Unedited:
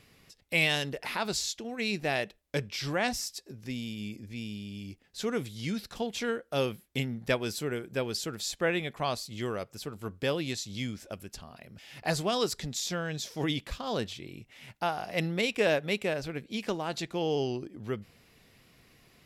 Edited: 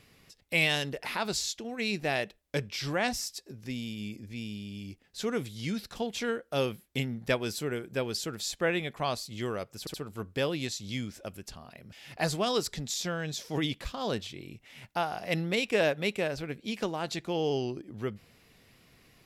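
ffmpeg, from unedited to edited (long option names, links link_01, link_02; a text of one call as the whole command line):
ffmpeg -i in.wav -filter_complex "[0:a]asplit=3[link_01][link_02][link_03];[link_01]atrim=end=9.872[link_04];[link_02]atrim=start=9.798:end=9.872[link_05];[link_03]atrim=start=9.798[link_06];[link_04][link_05]acrossfade=duration=0.004:curve1=hsin:curve2=hsin[link_07];[link_07][link_06]acrossfade=duration=0.004:curve1=hsin:curve2=hsin" out.wav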